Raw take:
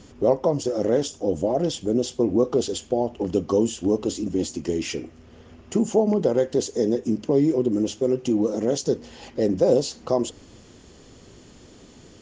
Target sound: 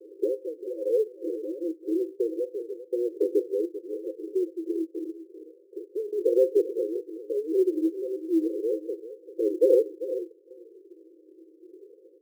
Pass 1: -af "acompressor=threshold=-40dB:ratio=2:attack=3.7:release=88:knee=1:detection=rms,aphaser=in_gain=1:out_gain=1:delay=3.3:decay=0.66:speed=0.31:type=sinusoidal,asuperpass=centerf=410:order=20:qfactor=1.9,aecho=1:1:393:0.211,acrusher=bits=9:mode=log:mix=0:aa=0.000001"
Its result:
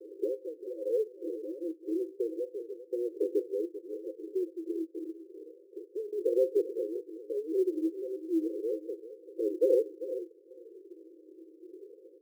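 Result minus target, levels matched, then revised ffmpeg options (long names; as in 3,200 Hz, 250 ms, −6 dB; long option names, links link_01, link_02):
downward compressor: peak gain reduction +5.5 dB
-af "acompressor=threshold=-29dB:ratio=2:attack=3.7:release=88:knee=1:detection=rms,aphaser=in_gain=1:out_gain=1:delay=3.3:decay=0.66:speed=0.31:type=sinusoidal,asuperpass=centerf=410:order=20:qfactor=1.9,aecho=1:1:393:0.211,acrusher=bits=9:mode=log:mix=0:aa=0.000001"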